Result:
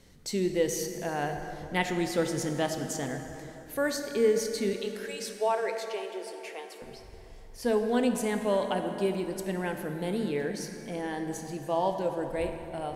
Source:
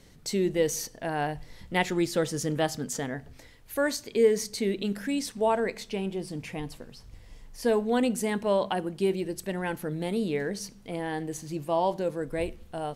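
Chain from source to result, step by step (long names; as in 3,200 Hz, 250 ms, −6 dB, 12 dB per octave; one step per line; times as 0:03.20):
0:04.73–0:06.82: Butterworth high-pass 360 Hz 72 dB per octave
dense smooth reverb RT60 3.6 s, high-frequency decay 0.55×, DRR 5 dB
level −2.5 dB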